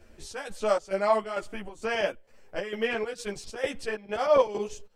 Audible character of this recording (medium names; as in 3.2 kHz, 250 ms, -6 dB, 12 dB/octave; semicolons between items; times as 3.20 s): chopped level 2.2 Hz, depth 65%, duty 70%; a shimmering, thickened sound